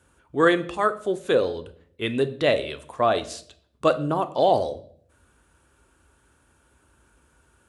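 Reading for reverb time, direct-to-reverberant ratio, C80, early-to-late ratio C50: 0.60 s, 10.0 dB, 19.5 dB, 16.0 dB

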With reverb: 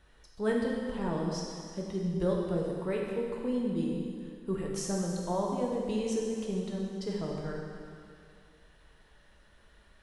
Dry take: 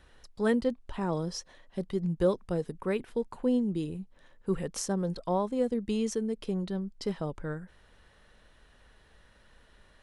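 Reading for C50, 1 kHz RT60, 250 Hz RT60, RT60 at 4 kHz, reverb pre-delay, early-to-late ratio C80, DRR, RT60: 0.5 dB, 2.3 s, 2.2 s, 2.3 s, 3 ms, 2.0 dB, −2.0 dB, 2.3 s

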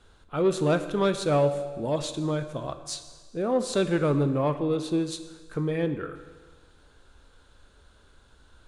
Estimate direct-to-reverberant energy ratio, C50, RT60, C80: 9.0 dB, 11.0 dB, 1.5 s, 12.5 dB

